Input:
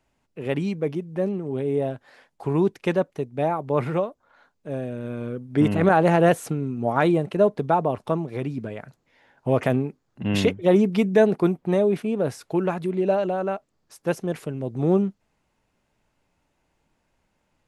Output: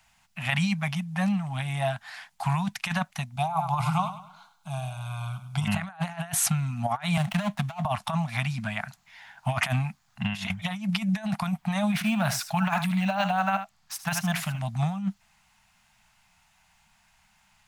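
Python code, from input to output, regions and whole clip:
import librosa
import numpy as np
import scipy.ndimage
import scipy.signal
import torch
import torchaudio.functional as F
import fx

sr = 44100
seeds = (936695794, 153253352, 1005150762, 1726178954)

y = fx.chain(x, sr, fx.fixed_phaser(hz=360.0, stages=8),
    fx.echo_feedback(ms=101, feedback_pct=37, wet_db=-12.0), at=(3.36, 5.65))
y = fx.chain(y, sr, fx.median_filter(points=25),
    fx.band_squash(depth_pct=40), at=(7.17, 7.85))
y = fx.chain(y, sr, fx.echo_single(ms=77, db=-12.0),
    fx.resample_linear(factor=2), at=(11.93, 14.59))
y = scipy.signal.sosfilt(scipy.signal.ellip(3, 1.0, 40, [210.0, 710.0], 'bandstop', fs=sr, output='sos'), y)
y = fx.tilt_shelf(y, sr, db=-5.5, hz=900.0)
y = fx.over_compress(y, sr, threshold_db=-31.0, ratio=-0.5)
y = y * librosa.db_to_amplitude(5.5)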